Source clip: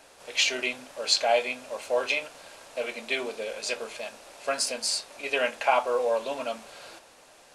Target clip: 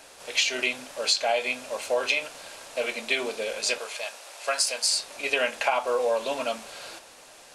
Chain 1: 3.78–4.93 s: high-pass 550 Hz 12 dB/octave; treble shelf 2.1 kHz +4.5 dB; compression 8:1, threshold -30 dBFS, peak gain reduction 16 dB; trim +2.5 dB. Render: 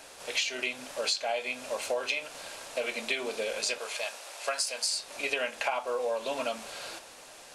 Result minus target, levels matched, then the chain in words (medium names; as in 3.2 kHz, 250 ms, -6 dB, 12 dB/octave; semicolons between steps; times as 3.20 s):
compression: peak gain reduction +6.5 dB
3.78–4.93 s: high-pass 550 Hz 12 dB/octave; treble shelf 2.1 kHz +4.5 dB; compression 8:1, threshold -22.5 dBFS, peak gain reduction 9 dB; trim +2.5 dB